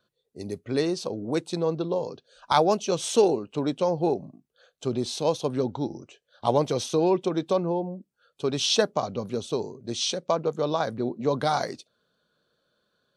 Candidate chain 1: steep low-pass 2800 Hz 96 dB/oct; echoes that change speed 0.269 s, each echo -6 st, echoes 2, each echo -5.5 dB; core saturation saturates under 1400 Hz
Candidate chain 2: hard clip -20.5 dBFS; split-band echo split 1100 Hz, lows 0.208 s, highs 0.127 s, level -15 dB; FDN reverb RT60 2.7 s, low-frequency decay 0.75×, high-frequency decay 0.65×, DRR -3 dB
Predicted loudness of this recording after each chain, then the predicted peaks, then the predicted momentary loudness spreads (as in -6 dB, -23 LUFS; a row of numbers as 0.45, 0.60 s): -28.5, -23.0 LUFS; -7.5, -8.5 dBFS; 9, 9 LU